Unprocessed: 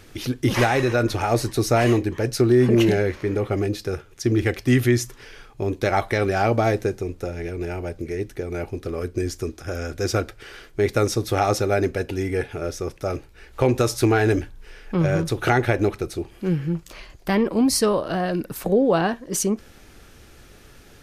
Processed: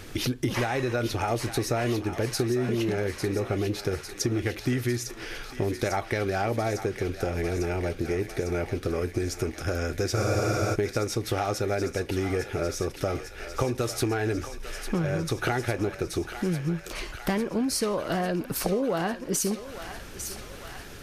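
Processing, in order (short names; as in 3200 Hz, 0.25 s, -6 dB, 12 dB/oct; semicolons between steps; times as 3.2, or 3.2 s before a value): compressor 6:1, threshold -30 dBFS, peak gain reduction 16 dB; on a send: thinning echo 0.851 s, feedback 80%, high-pass 860 Hz, level -8.5 dB; on the sum: spectral freeze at 10.17, 0.57 s; gain +5 dB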